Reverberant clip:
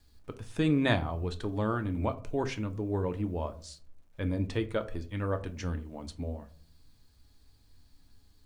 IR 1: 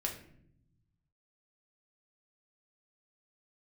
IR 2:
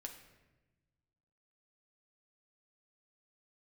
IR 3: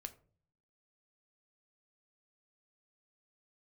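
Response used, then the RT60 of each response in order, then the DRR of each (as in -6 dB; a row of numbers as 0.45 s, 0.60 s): 3; 0.70 s, 1.1 s, 0.45 s; 0.0 dB, 2.5 dB, 7.5 dB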